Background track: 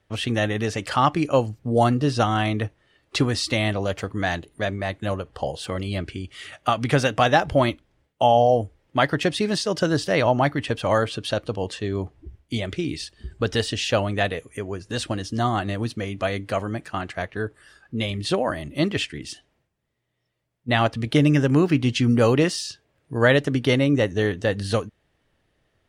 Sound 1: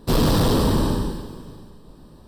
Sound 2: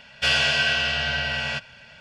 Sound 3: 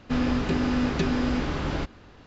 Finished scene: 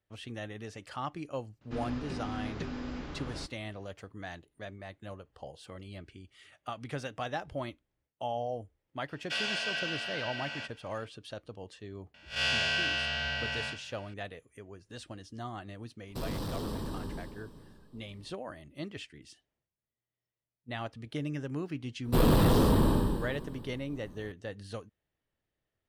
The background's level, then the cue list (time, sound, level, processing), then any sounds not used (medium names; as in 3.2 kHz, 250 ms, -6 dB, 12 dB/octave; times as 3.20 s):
background track -18 dB
1.61 s: add 3 -13.5 dB
9.08 s: add 2 -12.5 dB + high-pass 200 Hz 24 dB/octave
12.14 s: add 2 -7.5 dB + spectral blur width 102 ms
16.08 s: add 1 -13 dB + compression, threshold -21 dBFS
22.05 s: add 1 -5 dB + peaking EQ 5.6 kHz -10.5 dB 0.87 oct